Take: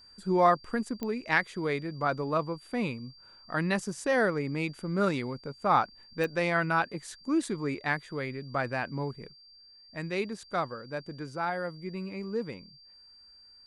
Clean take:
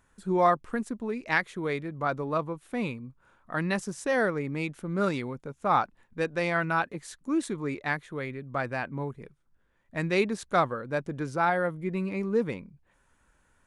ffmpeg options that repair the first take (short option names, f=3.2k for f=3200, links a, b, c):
-af "adeclick=t=4,bandreject=f=4.7k:w=30,asetnsamples=n=441:p=0,asendcmd='9.33 volume volume 6.5dB',volume=0dB"